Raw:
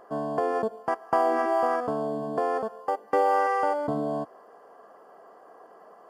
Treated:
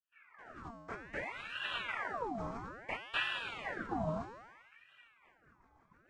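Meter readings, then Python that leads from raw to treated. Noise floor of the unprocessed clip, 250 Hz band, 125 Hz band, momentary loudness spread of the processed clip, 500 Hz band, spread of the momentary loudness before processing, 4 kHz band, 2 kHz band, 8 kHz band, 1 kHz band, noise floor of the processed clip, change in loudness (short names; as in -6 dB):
-53 dBFS, -12.5 dB, -5.0 dB, 17 LU, -19.0 dB, 8 LU, +8.0 dB, -2.5 dB, n/a, -17.0 dB, -70 dBFS, -13.0 dB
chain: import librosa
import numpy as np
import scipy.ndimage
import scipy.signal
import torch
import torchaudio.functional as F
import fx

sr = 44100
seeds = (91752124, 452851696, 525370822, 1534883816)

p1 = fx.fade_in_head(x, sr, length_s=1.7)
p2 = fx.tilt_shelf(p1, sr, db=-4.5, hz=1400.0)
p3 = fx.rotary_switch(p2, sr, hz=0.9, then_hz=6.7, switch_at_s=4.69)
p4 = fx.quant_dither(p3, sr, seeds[0], bits=6, dither='none')
p5 = p3 + (p4 * librosa.db_to_amplitude(-11.5))
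p6 = fx.doubler(p5, sr, ms=17.0, db=-3.5)
p7 = p6 + fx.echo_single(p6, sr, ms=812, db=-23.5, dry=0)
p8 = fx.noise_vocoder(p7, sr, seeds[1], bands=16)
p9 = fx.dereverb_blind(p8, sr, rt60_s=0.74)
p10 = fx.low_shelf(p9, sr, hz=460.0, db=11.5)
p11 = fx.comb_fb(p10, sr, f0_hz=230.0, decay_s=1.4, harmonics='all', damping=0.0, mix_pct=90)
p12 = fx.ring_lfo(p11, sr, carrier_hz=1300.0, swing_pct=70, hz=0.61)
y = p12 * librosa.db_to_amplitude(5.5)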